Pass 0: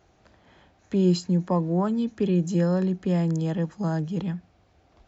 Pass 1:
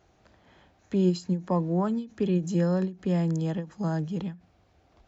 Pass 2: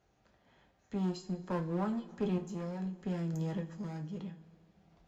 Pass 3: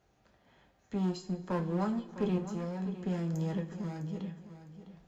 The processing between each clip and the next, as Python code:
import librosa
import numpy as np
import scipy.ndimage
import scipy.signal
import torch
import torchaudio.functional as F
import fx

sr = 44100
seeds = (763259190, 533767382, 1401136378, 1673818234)

y1 = fx.end_taper(x, sr, db_per_s=200.0)
y1 = y1 * 10.0 ** (-2.0 / 20.0)
y2 = fx.clip_asym(y1, sr, top_db=-28.0, bottom_db=-19.0)
y2 = fx.tremolo_random(y2, sr, seeds[0], hz=2.1, depth_pct=55)
y2 = fx.rev_double_slope(y2, sr, seeds[1], early_s=0.31, late_s=2.9, knee_db=-20, drr_db=3.5)
y2 = y2 * 10.0 ** (-6.5 / 20.0)
y3 = fx.echo_feedback(y2, sr, ms=656, feedback_pct=25, wet_db=-13)
y3 = y3 * 10.0 ** (2.0 / 20.0)